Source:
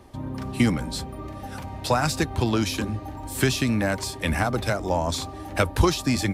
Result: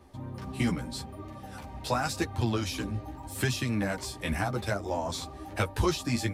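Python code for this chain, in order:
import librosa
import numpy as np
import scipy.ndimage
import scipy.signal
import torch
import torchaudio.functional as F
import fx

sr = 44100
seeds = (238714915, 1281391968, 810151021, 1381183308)

y = fx.chorus_voices(x, sr, voices=2, hz=0.84, base_ms=13, depth_ms=4.5, mix_pct=45)
y = y * librosa.db_to_amplitude(-3.5)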